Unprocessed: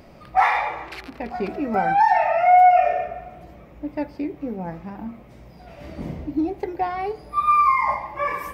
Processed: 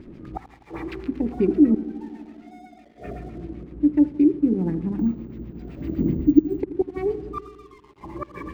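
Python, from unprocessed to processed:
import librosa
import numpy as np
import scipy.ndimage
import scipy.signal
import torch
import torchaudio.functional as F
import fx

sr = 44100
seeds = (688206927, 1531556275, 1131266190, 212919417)

p1 = fx.gate_flip(x, sr, shuts_db=-14.0, range_db=-27)
p2 = fx.rider(p1, sr, range_db=4, speed_s=0.5)
p3 = p1 + F.gain(torch.from_numpy(p2), 2.0).numpy()
p4 = fx.filter_lfo_lowpass(p3, sr, shape='sine', hz=7.9, low_hz=480.0, high_hz=4000.0, q=1.5)
p5 = fx.echo_filtered(p4, sr, ms=84, feedback_pct=81, hz=1500.0, wet_db=-14.5)
p6 = np.sign(p5) * np.maximum(np.abs(p5) - 10.0 ** (-43.5 / 20.0), 0.0)
p7 = fx.low_shelf_res(p6, sr, hz=460.0, db=11.0, q=3.0)
p8 = fx.resample_bad(p7, sr, factor=2, down='none', up='hold', at=(4.99, 6.6))
y = F.gain(torch.from_numpy(p8), -12.0).numpy()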